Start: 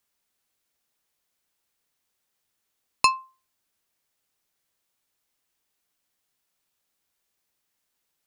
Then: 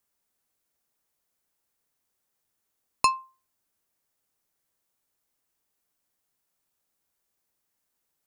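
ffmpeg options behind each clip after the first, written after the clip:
ffmpeg -i in.wav -af "equalizer=frequency=3200:width_type=o:width=1.9:gain=-6" out.wav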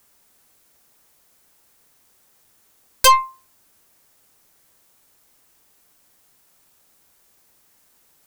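ffmpeg -i in.wav -af "aeval=exprs='0.447*sin(PI/2*6.31*val(0)/0.447)':channel_layout=same,aeval=exprs='0.473*(cos(1*acos(clip(val(0)/0.473,-1,1)))-cos(1*PI/2))+0.0668*(cos(4*acos(clip(val(0)/0.473,-1,1)))-cos(4*PI/2))':channel_layout=same" out.wav

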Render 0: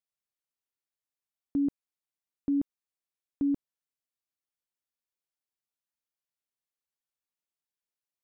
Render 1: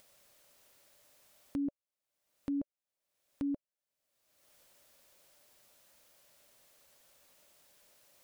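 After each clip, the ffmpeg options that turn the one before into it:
ffmpeg -i in.wav -af "equalizer=frequency=580:width_type=o:width=0.35:gain=12,acompressor=mode=upward:threshold=-31dB:ratio=2.5,volume=-7.5dB" out.wav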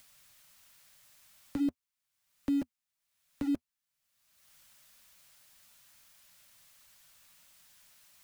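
ffmpeg -i in.wav -filter_complex "[0:a]flanger=delay=3:depth=6.2:regen=-52:speed=1.6:shape=triangular,acrossover=split=240|850|2500[link_01][link_02][link_03][link_04];[link_02]aeval=exprs='val(0)*gte(abs(val(0)),0.00316)':channel_layout=same[link_05];[link_01][link_05][link_03][link_04]amix=inputs=4:normalize=0,volume=8.5dB" out.wav

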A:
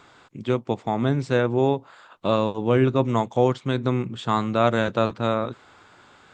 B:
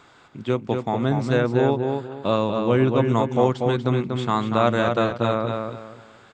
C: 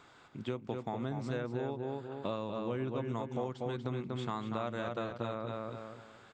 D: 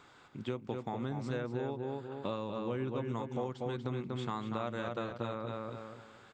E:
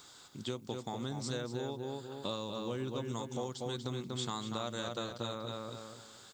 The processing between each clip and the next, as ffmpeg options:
ffmpeg -i in.wav -filter_complex "[0:a]asplit=2[link_01][link_02];[link_02]adelay=240,lowpass=frequency=4200:poles=1,volume=-4.5dB,asplit=2[link_03][link_04];[link_04]adelay=240,lowpass=frequency=4200:poles=1,volume=0.28,asplit=2[link_05][link_06];[link_06]adelay=240,lowpass=frequency=4200:poles=1,volume=0.28,asplit=2[link_07][link_08];[link_08]adelay=240,lowpass=frequency=4200:poles=1,volume=0.28[link_09];[link_01][link_03][link_05][link_07][link_09]amix=inputs=5:normalize=0" out.wav
ffmpeg -i in.wav -af "acompressor=threshold=-27dB:ratio=4,volume=-7dB" out.wav
ffmpeg -i in.wav -af "bandreject=frequency=660:width=16" out.wav
ffmpeg -i in.wav -af "aexciter=amount=5.3:drive=7.1:freq=3500,volume=-2dB" out.wav

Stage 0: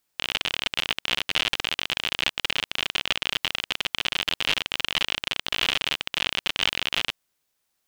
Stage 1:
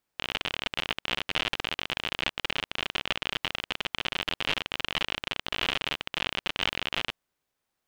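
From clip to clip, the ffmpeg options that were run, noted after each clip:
ffmpeg -i in.wav -af "highshelf=frequency=2800:gain=-10.5" out.wav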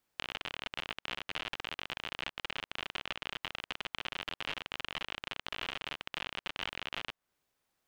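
ffmpeg -i in.wav -filter_complex "[0:a]acrossover=split=720|2000[link_01][link_02][link_03];[link_01]acompressor=threshold=-49dB:ratio=4[link_04];[link_02]acompressor=threshold=-42dB:ratio=4[link_05];[link_03]acompressor=threshold=-42dB:ratio=4[link_06];[link_04][link_05][link_06]amix=inputs=3:normalize=0,volume=1dB" out.wav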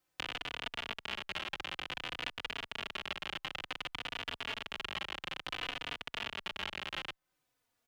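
ffmpeg -i in.wav -filter_complex "[0:a]asplit=2[link_01][link_02];[link_02]adelay=3.4,afreqshift=-0.56[link_03];[link_01][link_03]amix=inputs=2:normalize=1,volume=3dB" out.wav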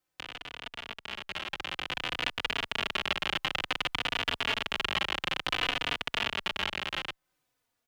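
ffmpeg -i in.wav -af "dynaudnorm=framelen=520:gausssize=7:maxgain=12dB,volume=-2.5dB" out.wav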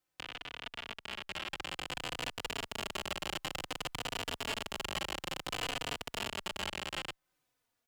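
ffmpeg -i in.wav -af "volume=28dB,asoftclip=hard,volume=-28dB,volume=-2dB" out.wav

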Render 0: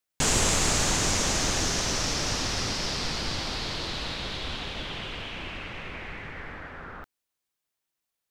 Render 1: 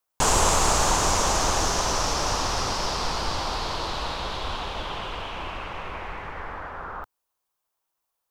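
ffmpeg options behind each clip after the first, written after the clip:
ffmpeg -i in.wav -af "equalizer=frequency=125:width_type=o:width=1:gain=-6,equalizer=frequency=250:width_type=o:width=1:gain=-6,equalizer=frequency=1000:width_type=o:width=1:gain=8,equalizer=frequency=2000:width_type=o:width=1:gain=-7,equalizer=frequency=4000:width_type=o:width=1:gain=-4,equalizer=frequency=8000:width_type=o:width=1:gain=-3,volume=5dB" out.wav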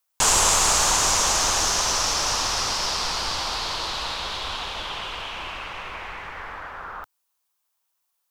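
ffmpeg -i in.wav -af "tiltshelf=frequency=1100:gain=-6" out.wav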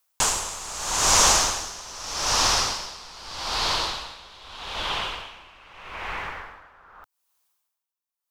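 ffmpeg -i in.wav -af "aeval=exprs='val(0)*pow(10,-21*(0.5-0.5*cos(2*PI*0.81*n/s))/20)':channel_layout=same,volume=4.5dB" out.wav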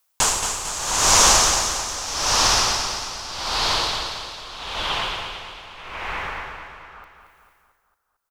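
ffmpeg -i in.wav -af "aecho=1:1:225|450|675|900|1125|1350:0.422|0.219|0.114|0.0593|0.0308|0.016,volume=3dB" out.wav

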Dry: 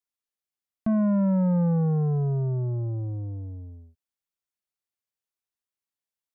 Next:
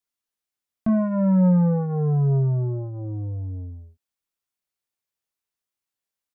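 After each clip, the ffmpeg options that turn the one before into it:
ffmpeg -i in.wav -filter_complex "[0:a]asplit=2[link_01][link_02];[link_02]adelay=22,volume=-6dB[link_03];[link_01][link_03]amix=inputs=2:normalize=0,volume=2.5dB" out.wav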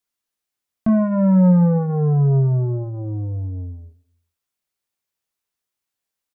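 ffmpeg -i in.wav -filter_complex "[0:a]asplit=2[link_01][link_02];[link_02]adelay=131,lowpass=frequency=2000:poles=1,volume=-24dB,asplit=2[link_03][link_04];[link_04]adelay=131,lowpass=frequency=2000:poles=1,volume=0.53,asplit=2[link_05][link_06];[link_06]adelay=131,lowpass=frequency=2000:poles=1,volume=0.53[link_07];[link_01][link_03][link_05][link_07]amix=inputs=4:normalize=0,volume=4dB" out.wav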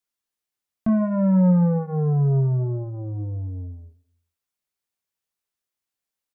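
ffmpeg -i in.wav -af "bandreject=frequency=159.9:width_type=h:width=4,bandreject=frequency=319.8:width_type=h:width=4,bandreject=frequency=479.7:width_type=h:width=4,bandreject=frequency=639.6:width_type=h:width=4,bandreject=frequency=799.5:width_type=h:width=4,bandreject=frequency=959.4:width_type=h:width=4,bandreject=frequency=1119.3:width_type=h:width=4,bandreject=frequency=1279.2:width_type=h:width=4,bandreject=frequency=1439.1:width_type=h:width=4,bandreject=frequency=1599:width_type=h:width=4,bandreject=frequency=1758.9:width_type=h:width=4,bandreject=frequency=1918.8:width_type=h:width=4,bandreject=frequency=2078.7:width_type=h:width=4,bandreject=frequency=2238.6:width_type=h:width=4,bandreject=frequency=2398.5:width_type=h:width=4,bandreject=frequency=2558.4:width_type=h:width=4,bandreject=frequency=2718.3:width_type=h:width=4,bandreject=frequency=2878.2:width_type=h:width=4,bandreject=frequency=3038.1:width_type=h:width=4,bandreject=frequency=3198:width_type=h:width=4,bandreject=frequency=3357.9:width_type=h:width=4,bandreject=frequency=3517.8:width_type=h:width=4,bandreject=frequency=3677.7:width_type=h:width=4,bandreject=frequency=3837.6:width_type=h:width=4,bandreject=frequency=3997.5:width_type=h:width=4,bandreject=frequency=4157.4:width_type=h:width=4,bandreject=frequency=4317.3:width_type=h:width=4,volume=-3.5dB" out.wav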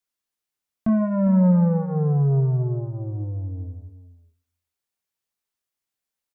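ffmpeg -i in.wav -af "aecho=1:1:403:0.2" out.wav

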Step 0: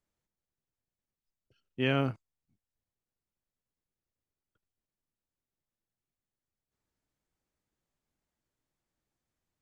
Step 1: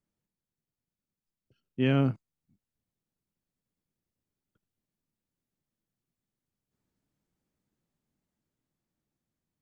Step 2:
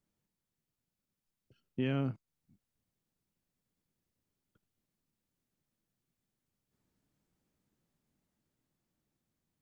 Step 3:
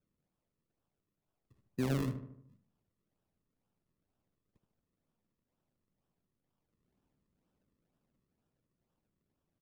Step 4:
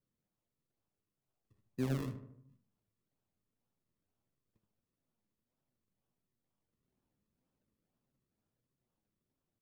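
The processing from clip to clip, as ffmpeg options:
ffmpeg -i in.wav -af "dynaudnorm=framelen=880:gausssize=5:maxgain=4dB,equalizer=frequency=190:width=0.68:gain=10.5,volume=-4.5dB" out.wav
ffmpeg -i in.wav -af "acompressor=threshold=-36dB:ratio=2.5,volume=2dB" out.wav
ffmpeg -i in.wav -filter_complex "[0:a]acrossover=split=290[link_01][link_02];[link_02]acrusher=samples=40:mix=1:aa=0.000001:lfo=1:lforange=40:lforate=2.1[link_03];[link_01][link_03]amix=inputs=2:normalize=0,asplit=2[link_04][link_05];[link_05]adelay=75,lowpass=frequency=1800:poles=1,volume=-8.5dB,asplit=2[link_06][link_07];[link_07]adelay=75,lowpass=frequency=1800:poles=1,volume=0.54,asplit=2[link_08][link_09];[link_09]adelay=75,lowpass=frequency=1800:poles=1,volume=0.54,asplit=2[link_10][link_11];[link_11]adelay=75,lowpass=frequency=1800:poles=1,volume=0.54,asplit=2[link_12][link_13];[link_13]adelay=75,lowpass=frequency=1800:poles=1,volume=0.54,asplit=2[link_14][link_15];[link_15]adelay=75,lowpass=frequency=1800:poles=1,volume=0.54[link_16];[link_04][link_06][link_08][link_10][link_12][link_14][link_16]amix=inputs=7:normalize=0" out.wav
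ffmpeg -i in.wav -af "flanger=delay=7.2:depth=2.8:regen=68:speed=1.6:shape=triangular" out.wav

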